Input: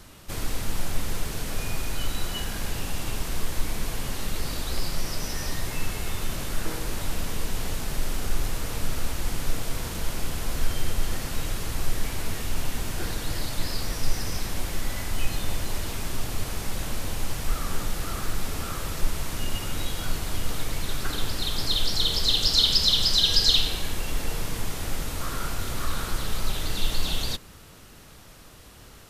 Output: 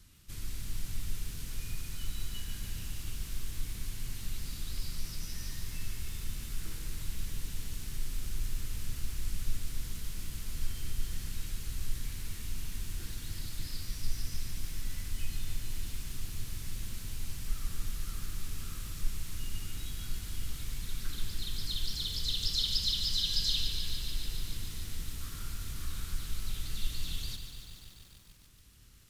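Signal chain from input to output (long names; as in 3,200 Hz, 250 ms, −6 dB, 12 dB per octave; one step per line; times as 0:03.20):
guitar amp tone stack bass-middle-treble 6-0-2
feedback echo at a low word length 145 ms, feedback 80%, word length 10 bits, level −8.5 dB
level +4 dB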